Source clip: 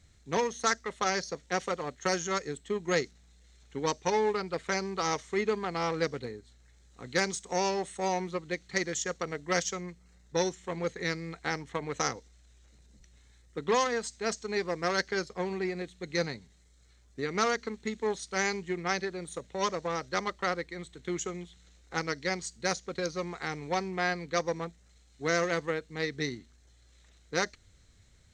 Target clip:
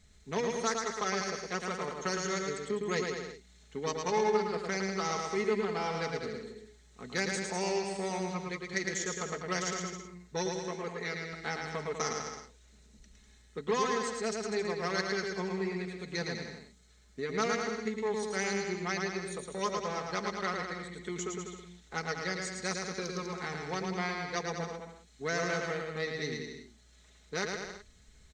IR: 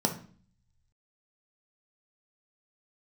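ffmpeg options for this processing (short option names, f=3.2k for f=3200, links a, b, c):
-filter_complex "[0:a]aecho=1:1:4.7:0.56,asplit=2[a][b];[b]acompressor=threshold=-40dB:ratio=6,volume=0dB[c];[a][c]amix=inputs=2:normalize=0,asettb=1/sr,asplit=3[d][e][f];[d]atrim=end=10.484[g];[e]atrim=start=10.48:end=11.33,asetpts=PTS-STARTPTS,afade=t=in:d=0.004:c=qsin,afade=t=out:st=0.846:d=0.004:c=qsin,bass=f=250:g=-7,treble=f=4k:g=-4[h];[f]atrim=start=11.326[i];[g][h]acrossfade=d=0.004:c1=hsin:c2=qsin[j];[j][i]acrossfade=d=0.004:c1=qsin:c2=hsin,asplit=2[k][l];[l]aecho=0:1:110|198|268.4|324.7|369.8:0.631|0.398|0.251|0.158|0.1[m];[k][m]amix=inputs=2:normalize=0,volume=-7dB"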